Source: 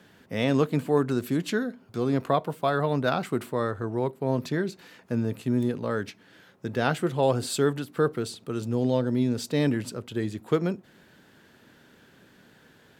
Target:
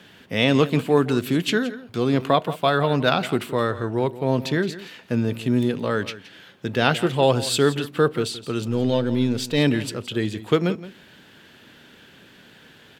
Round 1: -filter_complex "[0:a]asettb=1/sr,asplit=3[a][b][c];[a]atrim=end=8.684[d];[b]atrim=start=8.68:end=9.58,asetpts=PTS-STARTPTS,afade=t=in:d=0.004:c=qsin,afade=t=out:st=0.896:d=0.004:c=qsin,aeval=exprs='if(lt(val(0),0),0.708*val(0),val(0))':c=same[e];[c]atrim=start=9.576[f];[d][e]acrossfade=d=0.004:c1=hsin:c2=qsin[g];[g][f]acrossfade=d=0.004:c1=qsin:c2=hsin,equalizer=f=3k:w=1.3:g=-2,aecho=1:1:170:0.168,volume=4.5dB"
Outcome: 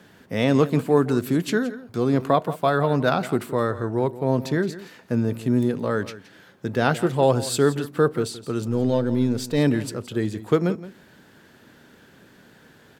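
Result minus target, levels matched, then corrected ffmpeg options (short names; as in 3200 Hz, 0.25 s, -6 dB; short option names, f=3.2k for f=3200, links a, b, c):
4000 Hz band -7.5 dB
-filter_complex "[0:a]asettb=1/sr,asplit=3[a][b][c];[a]atrim=end=8.684[d];[b]atrim=start=8.68:end=9.58,asetpts=PTS-STARTPTS,afade=t=in:d=0.004:c=qsin,afade=t=out:st=0.896:d=0.004:c=qsin,aeval=exprs='if(lt(val(0),0),0.708*val(0),val(0))':c=same[e];[c]atrim=start=9.576[f];[d][e]acrossfade=d=0.004:c1=hsin:c2=qsin[g];[g][f]acrossfade=d=0.004:c1=qsin:c2=hsin,equalizer=f=3k:w=1.3:g=8.5,aecho=1:1:170:0.168,volume=4.5dB"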